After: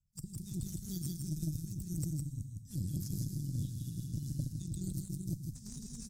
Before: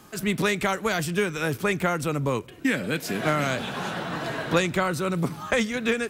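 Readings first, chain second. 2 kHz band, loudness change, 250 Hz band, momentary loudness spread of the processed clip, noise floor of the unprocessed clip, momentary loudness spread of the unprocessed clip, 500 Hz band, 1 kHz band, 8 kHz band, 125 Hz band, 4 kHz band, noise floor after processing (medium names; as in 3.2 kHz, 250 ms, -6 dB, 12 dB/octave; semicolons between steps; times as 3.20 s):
under -40 dB, -14.0 dB, -13.0 dB, 6 LU, -46 dBFS, 6 LU, -33.0 dB, under -40 dB, -9.5 dB, -5.0 dB, -21.5 dB, -51 dBFS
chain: coarse spectral quantiser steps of 30 dB; gate -31 dBFS, range -28 dB; amplifier tone stack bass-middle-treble 10-0-1; compressor with a negative ratio -49 dBFS, ratio -0.5; elliptic band-stop 160–5200 Hz, stop band 40 dB; delay 160 ms -3 dB; Schroeder reverb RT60 1.3 s, combs from 28 ms, DRR 9.5 dB; Chebyshev shaper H 4 -16 dB, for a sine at -38 dBFS; trim +14 dB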